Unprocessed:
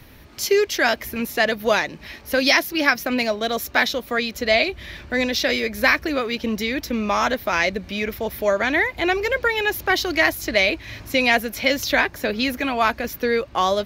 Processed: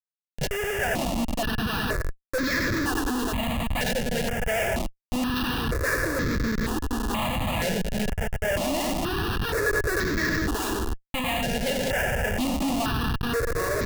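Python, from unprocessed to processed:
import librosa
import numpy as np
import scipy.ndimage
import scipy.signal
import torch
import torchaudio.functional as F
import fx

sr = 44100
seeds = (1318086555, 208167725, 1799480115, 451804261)

p1 = x + 10.0 ** (-5.5 / 20.0) * np.pad(x, (int(96 * sr / 1000.0), 0))[:len(x)]
p2 = 10.0 ** (-16.0 / 20.0) * np.tanh(p1 / 10.0 ** (-16.0 / 20.0))
p3 = p1 + (p2 * 10.0 ** (-6.5 / 20.0))
p4 = fx.mod_noise(p3, sr, seeds[0], snr_db=24)
p5 = p4 + fx.echo_filtered(p4, sr, ms=199, feedback_pct=40, hz=1700.0, wet_db=-5.0, dry=0)
p6 = fx.schmitt(p5, sr, flips_db=-16.0)
p7 = fx.small_body(p6, sr, hz=(1700.0, 2800.0), ring_ms=45, db=12)
p8 = fx.phaser_held(p7, sr, hz=2.1, low_hz=310.0, high_hz=2900.0)
y = p8 * 10.0 ** (-6.0 / 20.0)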